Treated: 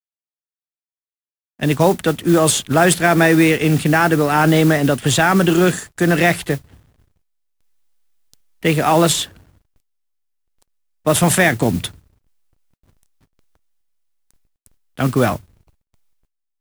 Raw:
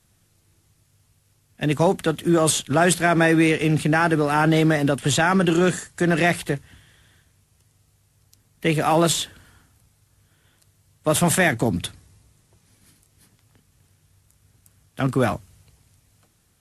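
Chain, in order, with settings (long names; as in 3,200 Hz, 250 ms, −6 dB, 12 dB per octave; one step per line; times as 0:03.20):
slack as between gear wheels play −42 dBFS
noise that follows the level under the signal 20 dB
level +4.5 dB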